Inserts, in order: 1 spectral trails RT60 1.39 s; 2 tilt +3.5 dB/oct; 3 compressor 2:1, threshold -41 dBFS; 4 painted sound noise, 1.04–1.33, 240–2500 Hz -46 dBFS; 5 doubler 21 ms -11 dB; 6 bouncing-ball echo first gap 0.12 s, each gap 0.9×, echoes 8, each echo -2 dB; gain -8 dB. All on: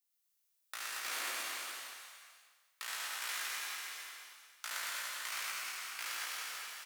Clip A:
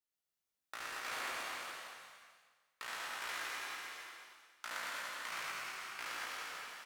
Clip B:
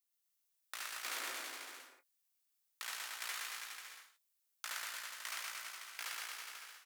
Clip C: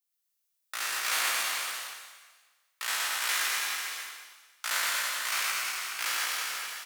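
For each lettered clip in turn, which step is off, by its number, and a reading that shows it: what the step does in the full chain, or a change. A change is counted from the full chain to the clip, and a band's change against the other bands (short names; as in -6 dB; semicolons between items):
2, 8 kHz band -9.5 dB; 1, 250 Hz band +3.0 dB; 3, mean gain reduction 6.0 dB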